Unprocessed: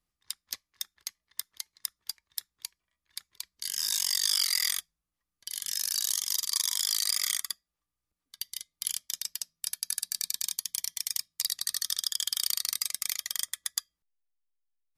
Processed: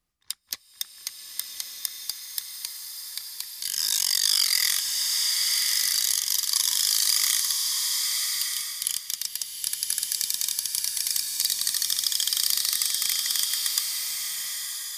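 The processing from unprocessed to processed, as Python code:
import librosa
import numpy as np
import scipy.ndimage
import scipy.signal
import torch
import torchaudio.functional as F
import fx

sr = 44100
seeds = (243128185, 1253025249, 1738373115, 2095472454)

y = fx.rev_bloom(x, sr, seeds[0], attack_ms=1220, drr_db=1.0)
y = y * librosa.db_to_amplitude(4.5)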